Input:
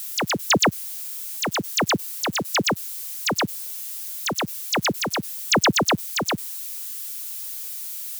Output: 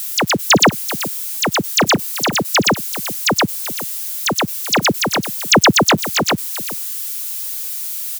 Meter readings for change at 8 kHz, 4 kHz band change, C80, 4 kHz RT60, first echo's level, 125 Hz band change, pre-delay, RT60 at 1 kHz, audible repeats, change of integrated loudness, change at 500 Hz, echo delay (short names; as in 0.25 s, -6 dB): +7.5 dB, +7.5 dB, none, none, -14.0 dB, +7.5 dB, none, none, 1, +7.5 dB, +7.5 dB, 0.383 s